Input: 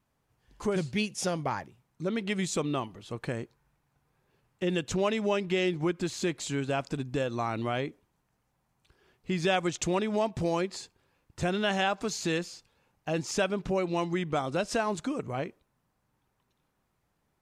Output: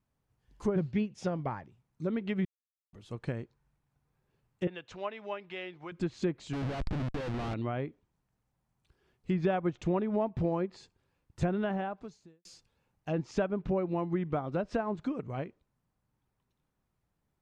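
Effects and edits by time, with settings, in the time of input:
2.45–2.93 mute
4.67–5.92 three-band isolator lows -17 dB, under 540 Hz, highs -16 dB, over 4300 Hz
6.53–7.54 Schmitt trigger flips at -37 dBFS
11.63–12.45 studio fade out
whole clip: treble ducked by the level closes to 1400 Hz, closed at -25 dBFS; low shelf 250 Hz +7.5 dB; upward expander 1.5:1, over -34 dBFS; gain -2.5 dB

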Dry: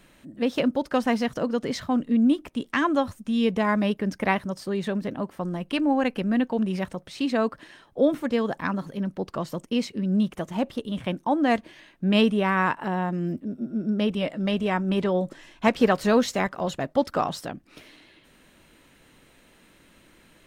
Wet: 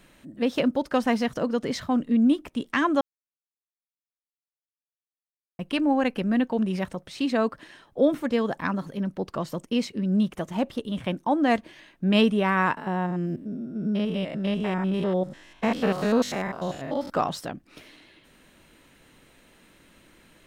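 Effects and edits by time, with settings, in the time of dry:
3.01–5.59 mute
12.77–17.1 stepped spectrum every 0.1 s

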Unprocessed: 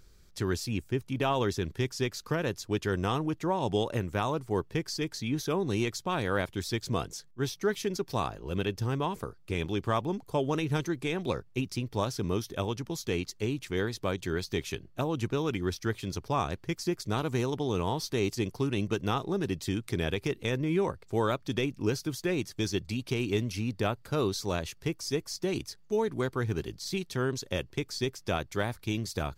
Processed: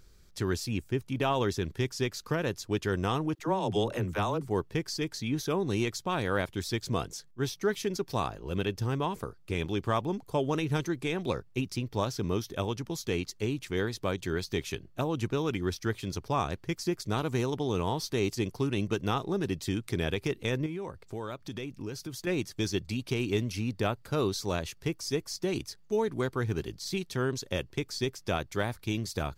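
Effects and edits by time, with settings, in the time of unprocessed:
3.35–4.48 dispersion lows, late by 45 ms, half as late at 330 Hz
11.76–12.5 bell 9500 Hz -6 dB 0.29 oct
20.66–22.27 compressor 3:1, threshold -36 dBFS

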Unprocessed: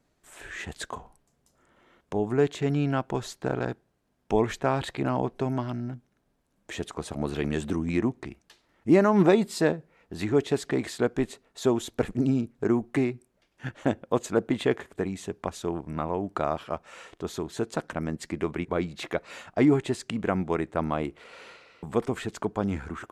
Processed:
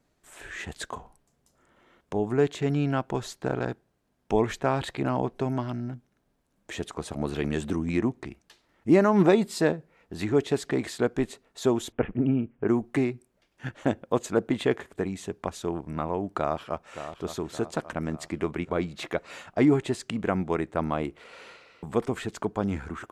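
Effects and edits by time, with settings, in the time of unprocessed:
11.92–12.68 steep low-pass 3100 Hz 72 dB/oct
16.37–16.98 echo throw 0.57 s, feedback 55%, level -10.5 dB

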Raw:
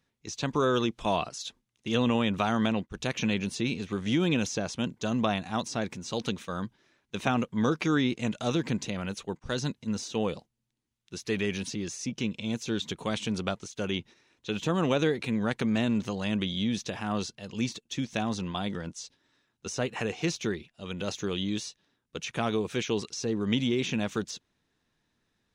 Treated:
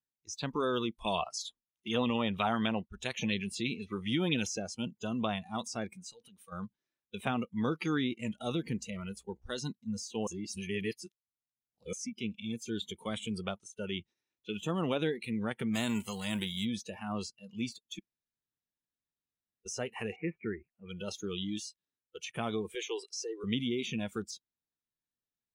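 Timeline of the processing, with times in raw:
0.99–4.54 LFO bell 4 Hz 610–5000 Hz +8 dB
6.09–6.52 compressor 20:1, threshold -37 dBFS
8.34–9.59 buzz 60 Hz, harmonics 14, -57 dBFS
10.27–11.93 reverse
15.73–16.64 spectral whitening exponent 0.6
17.99–19.66 room tone
20.16–20.89 steep low-pass 2500 Hz 72 dB/oct
22.75–23.44 steep high-pass 350 Hz
whole clip: tone controls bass +1 dB, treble +5 dB; spectral noise reduction 20 dB; gain -6 dB

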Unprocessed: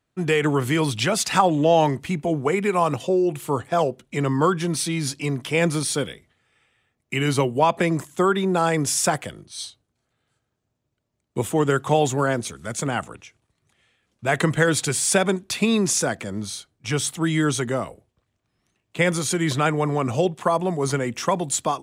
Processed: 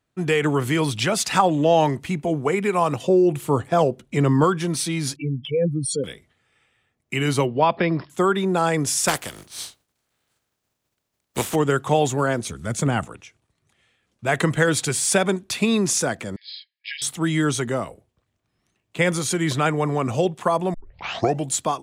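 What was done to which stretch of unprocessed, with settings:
3.04–4.44 low shelf 500 Hz +5.5 dB
5.16–6.04 spectral contrast raised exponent 3.1
7.46–8.1 brick-wall FIR low-pass 5500 Hz
9.07–11.54 spectral contrast lowered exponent 0.48
12.49–13.05 low shelf 250 Hz +9 dB
16.36–17.02 brick-wall FIR band-pass 1600–5200 Hz
20.74 tape start 0.76 s

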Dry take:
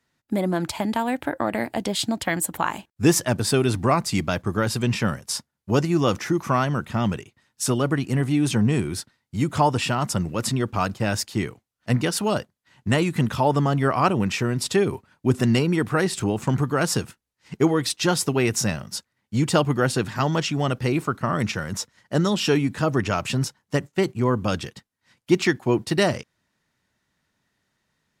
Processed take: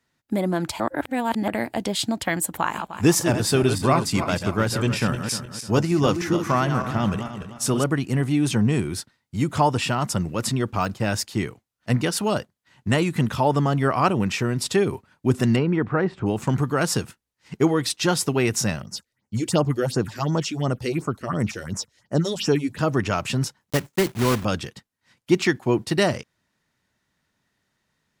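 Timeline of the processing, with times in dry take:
0.8–1.48 reverse
2.57–7.84 regenerating reverse delay 0.152 s, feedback 56%, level -7.5 dB
10.68–11.08 de-esser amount 70%
15.55–16.25 LPF 2400 Hz -> 1300 Hz
18.82–22.79 phaser stages 4, 2.8 Hz, lowest notch 140–3700 Hz
23.61–24.45 block floating point 3-bit

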